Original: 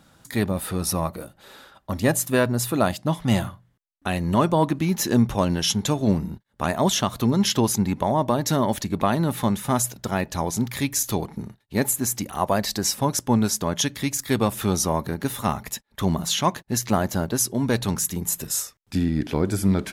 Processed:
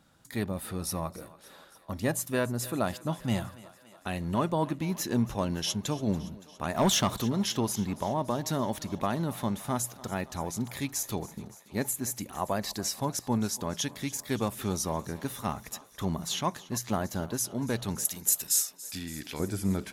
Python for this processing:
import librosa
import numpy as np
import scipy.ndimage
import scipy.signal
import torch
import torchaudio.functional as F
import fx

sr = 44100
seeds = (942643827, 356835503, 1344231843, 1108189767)

y = fx.leveller(x, sr, passes=2, at=(6.75, 7.22))
y = fx.tilt_shelf(y, sr, db=-9.5, hz=1300.0, at=(18.05, 19.4))
y = fx.echo_thinned(y, sr, ms=284, feedback_pct=71, hz=290.0, wet_db=-18.5)
y = y * 10.0 ** (-8.5 / 20.0)